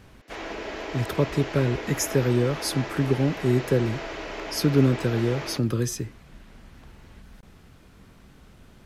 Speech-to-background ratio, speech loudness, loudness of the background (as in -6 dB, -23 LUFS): 10.0 dB, -25.0 LUFS, -35.0 LUFS